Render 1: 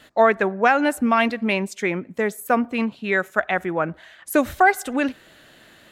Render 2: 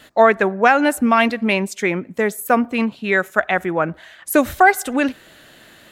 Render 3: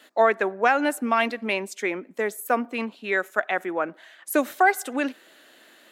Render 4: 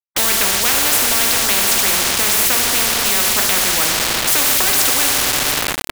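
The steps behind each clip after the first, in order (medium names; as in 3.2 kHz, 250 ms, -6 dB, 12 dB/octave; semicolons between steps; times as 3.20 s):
treble shelf 8.1 kHz +4.5 dB; trim +3.5 dB
high-pass 250 Hz 24 dB/octave; trim -6.5 dB
two-slope reverb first 0.39 s, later 4.5 s, from -18 dB, DRR 2.5 dB; word length cut 6-bit, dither none; spectrum-flattening compressor 10:1; trim +2 dB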